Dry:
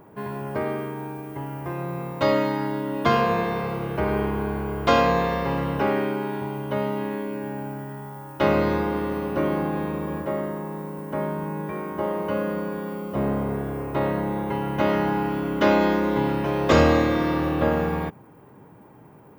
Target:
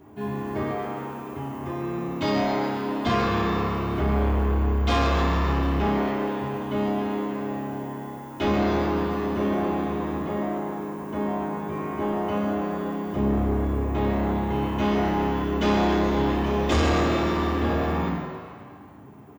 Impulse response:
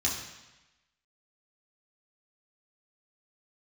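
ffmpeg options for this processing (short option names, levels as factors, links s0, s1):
-filter_complex "[0:a]asplit=8[s0][s1][s2][s3][s4][s5][s6][s7];[s1]adelay=136,afreqshift=100,volume=0.316[s8];[s2]adelay=272,afreqshift=200,volume=0.186[s9];[s3]adelay=408,afreqshift=300,volume=0.11[s10];[s4]adelay=544,afreqshift=400,volume=0.0653[s11];[s5]adelay=680,afreqshift=500,volume=0.0385[s12];[s6]adelay=816,afreqshift=600,volume=0.0226[s13];[s7]adelay=952,afreqshift=700,volume=0.0133[s14];[s0][s8][s9][s10][s11][s12][s13][s14]amix=inputs=8:normalize=0[s15];[1:a]atrim=start_sample=2205[s16];[s15][s16]afir=irnorm=-1:irlink=0,asoftclip=type=tanh:threshold=0.335,volume=0.447"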